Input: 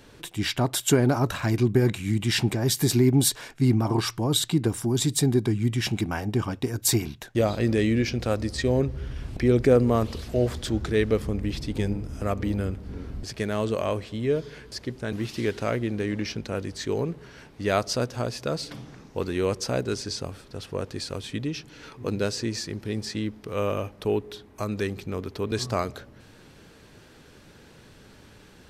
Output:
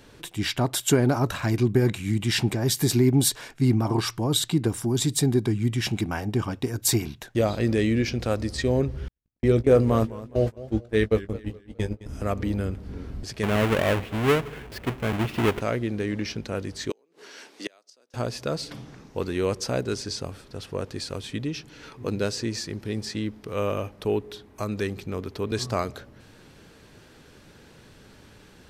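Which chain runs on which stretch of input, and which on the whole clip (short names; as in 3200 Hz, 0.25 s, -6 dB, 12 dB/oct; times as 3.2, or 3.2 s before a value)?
9.08–12.06 gate -26 dBFS, range -58 dB + doubler 18 ms -9.5 dB + warbling echo 0.209 s, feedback 34%, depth 151 cents, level -16.5 dB
13.43–15.61 half-waves squared off + resonant high shelf 3600 Hz -7.5 dB, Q 1.5
16.9–18.14 HPF 290 Hz 24 dB/oct + flipped gate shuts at -21 dBFS, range -36 dB + bell 6300 Hz +9 dB 2.4 oct
whole clip: dry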